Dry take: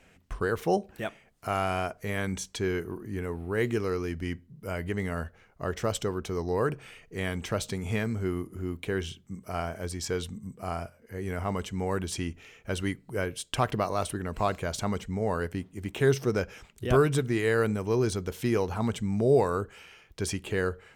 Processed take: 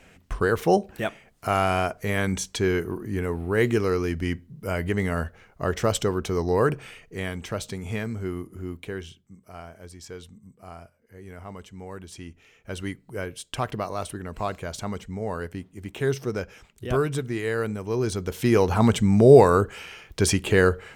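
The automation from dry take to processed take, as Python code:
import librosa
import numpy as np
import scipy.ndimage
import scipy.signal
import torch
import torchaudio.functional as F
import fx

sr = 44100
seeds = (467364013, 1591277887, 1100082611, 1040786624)

y = fx.gain(x, sr, db=fx.line((6.79, 6.0), (7.36, -0.5), (8.72, -0.5), (9.35, -9.0), (12.1, -9.0), (12.84, -1.5), (17.84, -1.5), (18.78, 10.0)))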